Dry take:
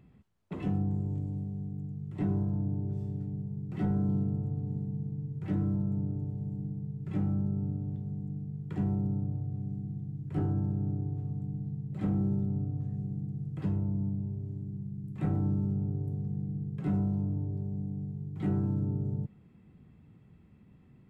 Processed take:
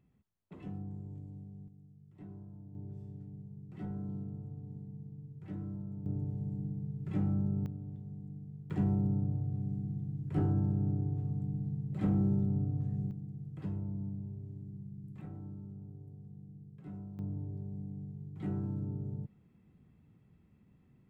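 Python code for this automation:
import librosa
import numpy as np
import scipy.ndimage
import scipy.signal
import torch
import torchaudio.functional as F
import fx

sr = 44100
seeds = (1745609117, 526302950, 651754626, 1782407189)

y = fx.gain(x, sr, db=fx.steps((0.0, -12.0), (1.68, -19.0), (2.75, -11.0), (6.06, -1.5), (7.66, -8.0), (8.7, 0.0), (13.11, -7.0), (15.21, -16.0), (17.19, -6.5)))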